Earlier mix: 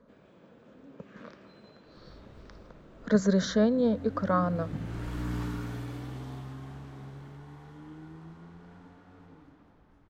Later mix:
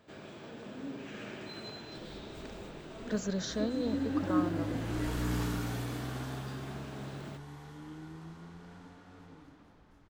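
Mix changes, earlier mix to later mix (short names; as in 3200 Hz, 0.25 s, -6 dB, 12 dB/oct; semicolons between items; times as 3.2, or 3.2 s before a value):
speech -10.5 dB; first sound +11.0 dB; master: add high shelf 3300 Hz +10.5 dB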